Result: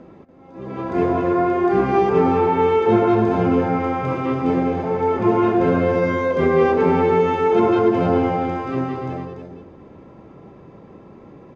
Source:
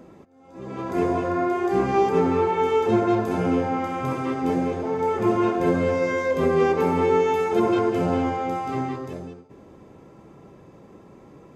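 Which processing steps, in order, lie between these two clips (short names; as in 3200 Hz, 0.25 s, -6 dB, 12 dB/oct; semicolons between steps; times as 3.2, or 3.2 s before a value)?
air absorption 170 m; echo 0.288 s -6.5 dB; gain +4 dB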